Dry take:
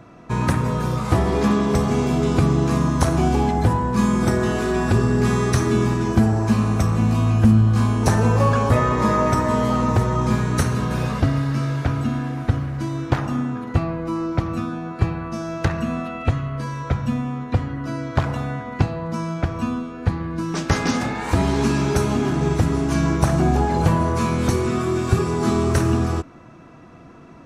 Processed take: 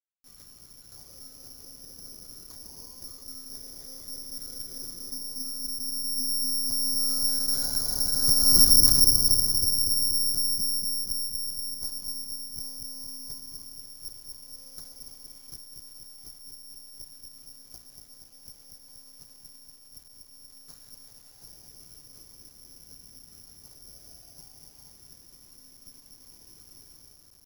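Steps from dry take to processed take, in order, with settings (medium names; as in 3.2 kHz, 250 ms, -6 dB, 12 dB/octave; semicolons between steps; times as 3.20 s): Doppler pass-by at 8.65 s, 58 m/s, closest 12 m; dynamic bell 140 Hz, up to +7 dB, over -47 dBFS, Q 0.96; in parallel at +3 dB: compression 6:1, threshold -38 dBFS, peak gain reduction 25 dB; on the sum: monotone LPC vocoder at 8 kHz 260 Hz; distance through air 160 m; on a send: feedback echo behind a low-pass 238 ms, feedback 64%, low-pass 620 Hz, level -4 dB; on the sum: careless resampling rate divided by 8×, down filtered, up zero stuff; bit crusher 6-bit; trim -14.5 dB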